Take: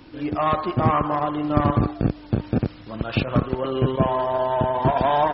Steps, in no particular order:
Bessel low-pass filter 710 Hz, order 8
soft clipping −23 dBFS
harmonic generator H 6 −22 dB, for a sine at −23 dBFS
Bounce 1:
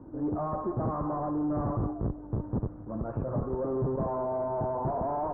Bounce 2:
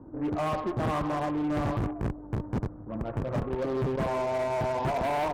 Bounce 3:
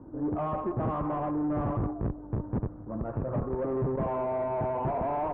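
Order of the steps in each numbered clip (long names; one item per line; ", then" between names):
harmonic generator, then soft clipping, then Bessel low-pass filter
Bessel low-pass filter, then harmonic generator, then soft clipping
harmonic generator, then Bessel low-pass filter, then soft clipping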